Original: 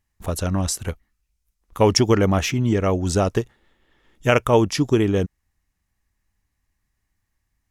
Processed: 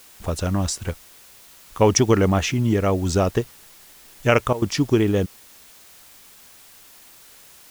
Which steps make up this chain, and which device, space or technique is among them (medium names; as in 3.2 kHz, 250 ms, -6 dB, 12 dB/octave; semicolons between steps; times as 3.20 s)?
worn cassette (low-pass 8.4 kHz; wow and flutter; level dips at 4.53 s, 88 ms -16 dB; white noise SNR 25 dB)